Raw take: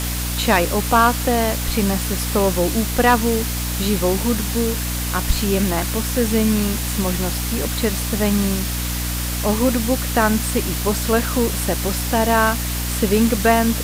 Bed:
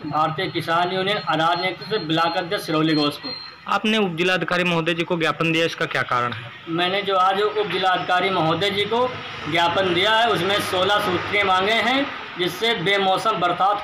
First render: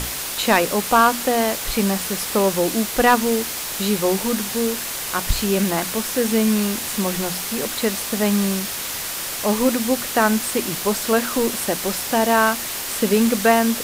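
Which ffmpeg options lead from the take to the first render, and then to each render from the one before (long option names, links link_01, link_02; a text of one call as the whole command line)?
ffmpeg -i in.wav -af "bandreject=frequency=60:width_type=h:width=6,bandreject=frequency=120:width_type=h:width=6,bandreject=frequency=180:width_type=h:width=6,bandreject=frequency=240:width_type=h:width=6,bandreject=frequency=300:width_type=h:width=6" out.wav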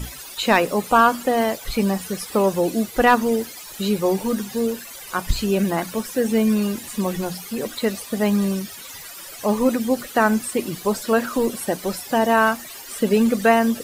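ffmpeg -i in.wav -af "afftdn=noise_reduction=16:noise_floor=-28" out.wav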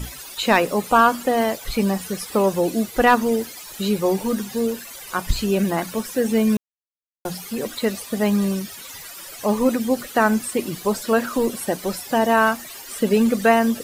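ffmpeg -i in.wav -filter_complex "[0:a]asplit=3[link_01][link_02][link_03];[link_01]atrim=end=6.57,asetpts=PTS-STARTPTS,afade=type=out:start_time=6.566:duration=0.004:curve=hsin[link_04];[link_02]atrim=start=6.57:end=7.25,asetpts=PTS-STARTPTS,volume=0[link_05];[link_03]atrim=start=7.25,asetpts=PTS-STARTPTS,afade=type=in:duration=0.004:curve=hsin[link_06];[link_04][link_05][link_06]concat=n=3:v=0:a=1" out.wav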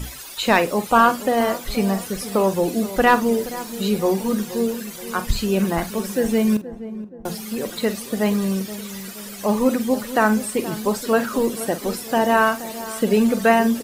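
ffmpeg -i in.wav -filter_complex "[0:a]asplit=2[link_01][link_02];[link_02]adelay=47,volume=-13dB[link_03];[link_01][link_03]amix=inputs=2:normalize=0,asplit=2[link_04][link_05];[link_05]adelay=475,lowpass=frequency=860:poles=1,volume=-13dB,asplit=2[link_06][link_07];[link_07]adelay=475,lowpass=frequency=860:poles=1,volume=0.54,asplit=2[link_08][link_09];[link_09]adelay=475,lowpass=frequency=860:poles=1,volume=0.54,asplit=2[link_10][link_11];[link_11]adelay=475,lowpass=frequency=860:poles=1,volume=0.54,asplit=2[link_12][link_13];[link_13]adelay=475,lowpass=frequency=860:poles=1,volume=0.54,asplit=2[link_14][link_15];[link_15]adelay=475,lowpass=frequency=860:poles=1,volume=0.54[link_16];[link_04][link_06][link_08][link_10][link_12][link_14][link_16]amix=inputs=7:normalize=0" out.wav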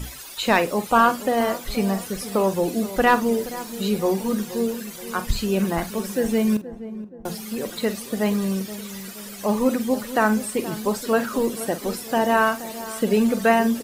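ffmpeg -i in.wav -af "volume=-2dB" out.wav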